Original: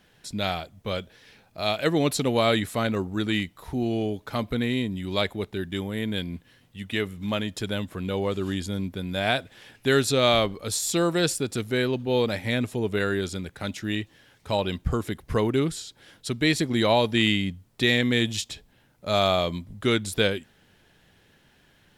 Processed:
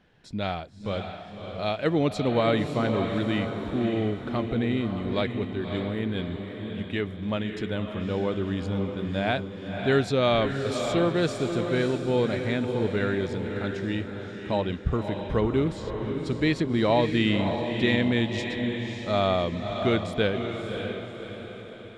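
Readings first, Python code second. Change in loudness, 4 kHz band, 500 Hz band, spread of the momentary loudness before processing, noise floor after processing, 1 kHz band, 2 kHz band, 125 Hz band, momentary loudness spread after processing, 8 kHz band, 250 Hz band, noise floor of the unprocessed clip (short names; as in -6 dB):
-1.0 dB, -6.0 dB, 0.0 dB, 11 LU, -41 dBFS, -1.0 dB, -3.0 dB, +1.0 dB, 10 LU, -14.0 dB, +0.5 dB, -61 dBFS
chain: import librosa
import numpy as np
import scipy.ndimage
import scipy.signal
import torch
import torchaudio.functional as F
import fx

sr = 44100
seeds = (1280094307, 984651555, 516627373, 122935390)

p1 = fx.spacing_loss(x, sr, db_at_10k=21)
y = p1 + fx.echo_diffused(p1, sr, ms=585, feedback_pct=49, wet_db=-6.0, dry=0)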